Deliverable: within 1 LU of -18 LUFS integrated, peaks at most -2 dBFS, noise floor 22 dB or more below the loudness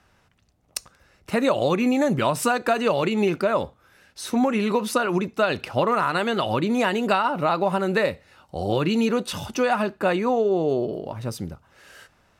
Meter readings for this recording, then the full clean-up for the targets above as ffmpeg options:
loudness -23.0 LUFS; peak level -7.5 dBFS; loudness target -18.0 LUFS
-> -af "volume=1.78"

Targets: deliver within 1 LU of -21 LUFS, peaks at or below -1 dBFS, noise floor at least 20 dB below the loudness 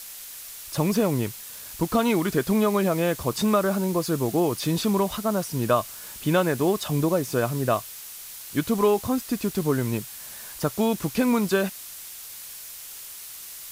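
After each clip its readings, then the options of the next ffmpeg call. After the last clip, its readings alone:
noise floor -40 dBFS; noise floor target -45 dBFS; loudness -24.5 LUFS; peak level -8.0 dBFS; loudness target -21.0 LUFS
-> -af "afftdn=nr=6:nf=-40"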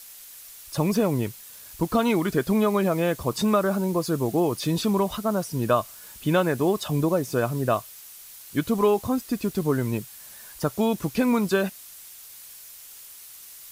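noise floor -45 dBFS; loudness -24.5 LUFS; peak level -8.0 dBFS; loudness target -21.0 LUFS
-> -af "volume=1.5"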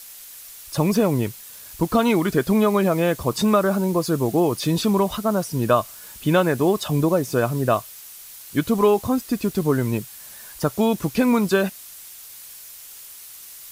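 loudness -21.0 LUFS; peak level -4.5 dBFS; noise floor -41 dBFS

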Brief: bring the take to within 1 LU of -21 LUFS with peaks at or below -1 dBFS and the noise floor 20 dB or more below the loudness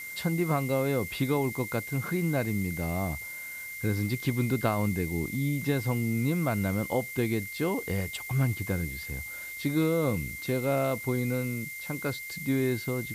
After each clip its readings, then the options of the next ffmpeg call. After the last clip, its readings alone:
steady tone 2.1 kHz; tone level -38 dBFS; noise floor -40 dBFS; noise floor target -50 dBFS; loudness -29.5 LUFS; peak level -13.0 dBFS; loudness target -21.0 LUFS
-> -af "bandreject=f=2100:w=30"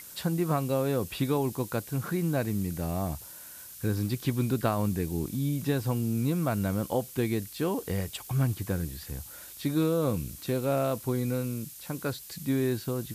steady tone not found; noise floor -46 dBFS; noise floor target -50 dBFS
-> -af "afftdn=nr=6:nf=-46"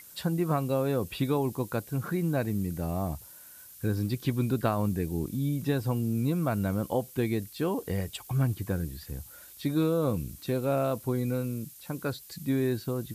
noise floor -50 dBFS; loudness -30.0 LUFS; peak level -13.5 dBFS; loudness target -21.0 LUFS
-> -af "volume=2.82"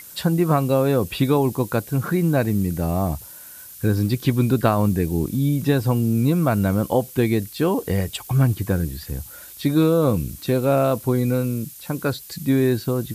loudness -21.0 LUFS; peak level -4.5 dBFS; noise floor -41 dBFS

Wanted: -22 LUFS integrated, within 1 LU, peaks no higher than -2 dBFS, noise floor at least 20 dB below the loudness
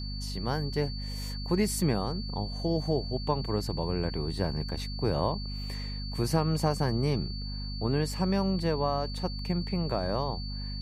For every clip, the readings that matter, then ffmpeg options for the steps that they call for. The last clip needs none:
hum 50 Hz; highest harmonic 250 Hz; hum level -33 dBFS; steady tone 4.5 kHz; tone level -41 dBFS; loudness -31.0 LUFS; peak level -13.0 dBFS; loudness target -22.0 LUFS
-> -af "bandreject=f=50:t=h:w=6,bandreject=f=100:t=h:w=6,bandreject=f=150:t=h:w=6,bandreject=f=200:t=h:w=6,bandreject=f=250:t=h:w=6"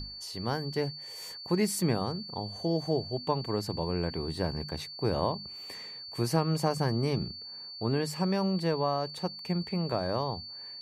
hum not found; steady tone 4.5 kHz; tone level -41 dBFS
-> -af "bandreject=f=4500:w=30"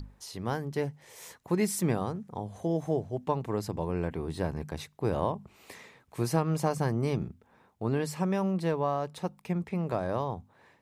steady tone not found; loudness -32.0 LUFS; peak level -12.5 dBFS; loudness target -22.0 LUFS
-> -af "volume=3.16"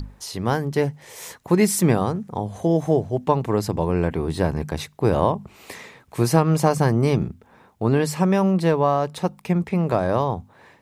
loudness -22.0 LUFS; peak level -2.5 dBFS; noise floor -54 dBFS

